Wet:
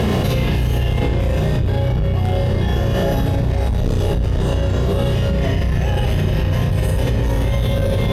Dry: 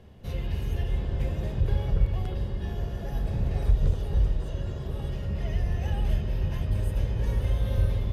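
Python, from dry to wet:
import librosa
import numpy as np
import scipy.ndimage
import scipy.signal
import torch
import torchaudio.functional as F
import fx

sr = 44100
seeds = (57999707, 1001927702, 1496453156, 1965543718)

y = fx.room_flutter(x, sr, wall_m=5.6, rt60_s=0.64)
y = 10.0 ** (-18.5 / 20.0) * np.tanh(y / 10.0 ** (-18.5 / 20.0))
y = fx.highpass(y, sr, hz=98.0, slope=6)
y = fx.doubler(y, sr, ms=18.0, db=-8)
y = fx.env_flatten(y, sr, amount_pct=100)
y = y * 10.0 ** (8.0 / 20.0)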